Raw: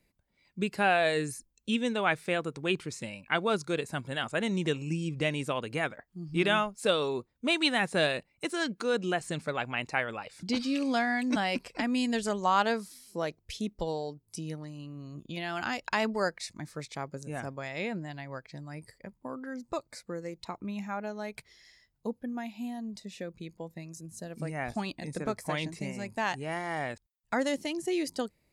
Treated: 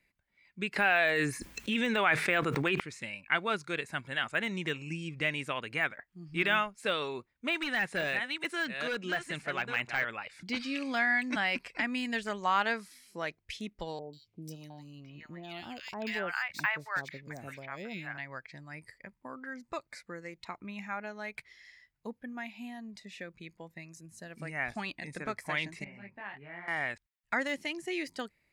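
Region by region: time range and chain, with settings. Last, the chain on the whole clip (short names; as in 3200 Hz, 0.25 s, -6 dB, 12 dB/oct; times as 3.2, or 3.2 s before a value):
0.76–2.8 HPF 200 Hz 6 dB/oct + fast leveller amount 100%
7.55–10.05 reverse delay 0.443 s, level -9 dB + hard clip -23 dBFS
13.99–18.18 three bands offset in time lows, highs, mids 0.14/0.71 s, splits 780/2900 Hz + decimation joined by straight lines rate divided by 2×
25.84–26.68 air absorption 430 m + compressor 2:1, threshold -38 dBFS + detuned doubles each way 40 cents
whole clip: bell 490 Hz -2.5 dB 0.22 oct; de-esser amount 90%; bell 2000 Hz +13 dB 1.5 oct; gain -7 dB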